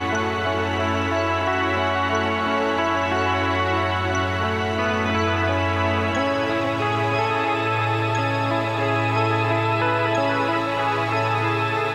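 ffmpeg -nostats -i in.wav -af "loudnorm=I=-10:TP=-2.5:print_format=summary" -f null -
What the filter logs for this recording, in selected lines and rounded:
Input Integrated:    -21.4 LUFS
Input True Peak:      -8.7 dBTP
Input LRA:             0.6 LU
Input Threshold:     -31.4 LUFS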